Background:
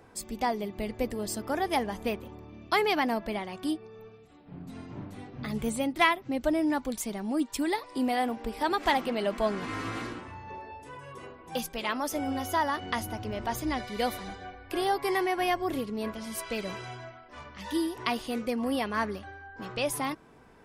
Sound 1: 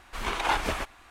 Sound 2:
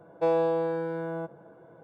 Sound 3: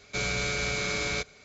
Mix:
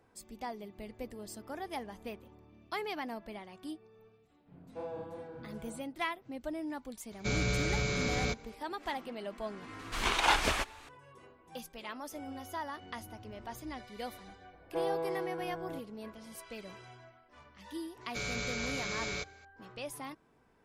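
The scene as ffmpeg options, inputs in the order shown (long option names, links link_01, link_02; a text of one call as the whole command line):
ffmpeg -i bed.wav -i cue0.wav -i cue1.wav -i cue2.wav -filter_complex "[2:a]asplit=2[link_01][link_02];[3:a]asplit=2[link_03][link_04];[0:a]volume=-12dB[link_05];[link_01]flanger=delay=19.5:depth=4.1:speed=2.8[link_06];[link_03]lowshelf=frequency=420:gain=10[link_07];[1:a]equalizer=frequency=5200:width_type=o:width=2.6:gain=6.5[link_08];[link_06]atrim=end=1.83,asetpts=PTS-STARTPTS,volume=-14dB,afade=type=in:duration=0.004:curve=hsin,afade=type=out:start_time=1.826:duration=0.004:curve=hsin,adelay=4540[link_09];[link_07]atrim=end=1.44,asetpts=PTS-STARTPTS,volume=-6dB,afade=type=in:duration=0.004:curve=hsin,afade=type=out:start_time=1.436:duration=0.004:curve=hsin,adelay=7110[link_10];[link_08]atrim=end=1.1,asetpts=PTS-STARTPTS,volume=-2.5dB,afade=type=in:duration=0.004:curve=hsin,afade=type=out:start_time=1.096:duration=0.004:curve=hsin,adelay=9790[link_11];[link_02]atrim=end=1.83,asetpts=PTS-STARTPTS,volume=-9.5dB,afade=type=in:duration=0.004:curve=hsin,afade=type=out:start_time=1.826:duration=0.004:curve=hsin,adelay=14530[link_12];[link_04]atrim=end=1.44,asetpts=PTS-STARTPTS,volume=-7.5dB,afade=type=in:duration=0.004:curve=hsin,afade=type=out:start_time=1.436:duration=0.004:curve=hsin,adelay=18010[link_13];[link_05][link_09][link_10][link_11][link_12][link_13]amix=inputs=6:normalize=0" out.wav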